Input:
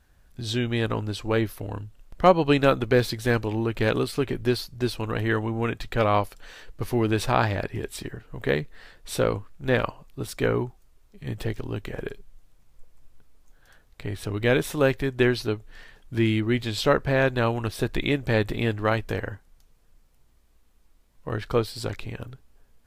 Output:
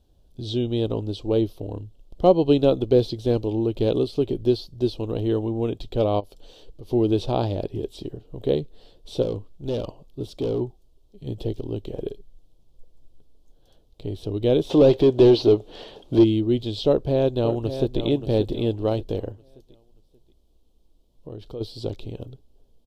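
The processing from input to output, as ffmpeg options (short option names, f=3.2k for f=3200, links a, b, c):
-filter_complex "[0:a]asplit=3[a][b][c];[a]afade=t=out:st=6.19:d=0.02[d];[b]acompressor=threshold=-35dB:ratio=12:attack=3.2:release=140:knee=1:detection=peak,afade=t=in:st=6.19:d=0.02,afade=t=out:st=6.89:d=0.02[e];[c]afade=t=in:st=6.89:d=0.02[f];[d][e][f]amix=inputs=3:normalize=0,asettb=1/sr,asplit=3[g][h][i];[g]atrim=end=9.224[j];[h]atrim=start=9.22:end=10.61,asetpts=PTS-STARTPTS,afade=t=in:d=0.004:c=qsin,afade=t=out:st=1.386:d=0.004:c=qsin,volume=24dB,asoftclip=hard,volume=-24dB[k];[i]atrim=start=10.606[l];[j][k]acrossfade=d=0.004:c1=hsin:c2=qsin[m];[m][l]acrossfade=d=0.004:c1=qsin:c2=hsin,asplit=3[n][o][p];[n]afade=t=out:st=14.69:d=0.02[q];[o]asplit=2[r][s];[s]highpass=f=720:p=1,volume=27dB,asoftclip=type=tanh:threshold=-8.5dB[t];[r][t]amix=inputs=2:normalize=0,lowpass=f=1.7k:p=1,volume=-6dB,afade=t=in:st=14.69:d=0.02,afade=t=out:st=16.23:d=0.02[u];[p]afade=t=in:st=16.23:d=0.02[v];[q][u][v]amix=inputs=3:normalize=0,asplit=2[w][x];[x]afade=t=in:st=16.86:d=0.01,afade=t=out:st=18.01:d=0.01,aecho=0:1:580|1160|1740|2320:0.316228|0.11068|0.0387379|0.0135583[y];[w][y]amix=inputs=2:normalize=0,asplit=3[z][aa][ab];[z]afade=t=out:st=19.31:d=0.02[ac];[aa]acompressor=threshold=-37dB:ratio=3:attack=3.2:release=140:knee=1:detection=peak,afade=t=in:st=19.31:d=0.02,afade=t=out:st=21.6:d=0.02[ad];[ab]afade=t=in:st=21.6:d=0.02[ae];[ac][ad][ae]amix=inputs=3:normalize=0,acrossover=split=6000[af][ag];[ag]acompressor=threshold=-49dB:ratio=4:attack=1:release=60[ah];[af][ah]amix=inputs=2:normalize=0,firequalizer=gain_entry='entry(220,0);entry(330,5);entry(620,1);entry(1300,-17);entry(1800,-25);entry(3200,0);entry(7100,-8)':delay=0.05:min_phase=1"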